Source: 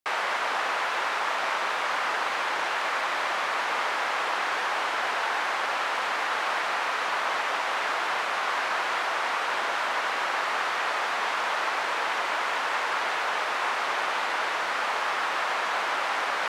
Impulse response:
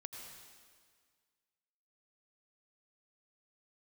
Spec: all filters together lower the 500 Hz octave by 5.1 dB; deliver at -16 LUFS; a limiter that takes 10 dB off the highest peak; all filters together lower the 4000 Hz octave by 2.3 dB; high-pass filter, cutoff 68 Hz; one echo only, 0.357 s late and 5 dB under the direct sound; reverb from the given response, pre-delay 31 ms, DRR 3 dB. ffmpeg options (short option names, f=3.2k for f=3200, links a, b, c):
-filter_complex "[0:a]highpass=68,equalizer=f=500:t=o:g=-7,equalizer=f=4k:t=o:g=-3,alimiter=level_in=1.5dB:limit=-24dB:level=0:latency=1,volume=-1.5dB,aecho=1:1:357:0.562,asplit=2[a][b];[1:a]atrim=start_sample=2205,adelay=31[c];[b][c]afir=irnorm=-1:irlink=0,volume=0.5dB[d];[a][d]amix=inputs=2:normalize=0,volume=14dB"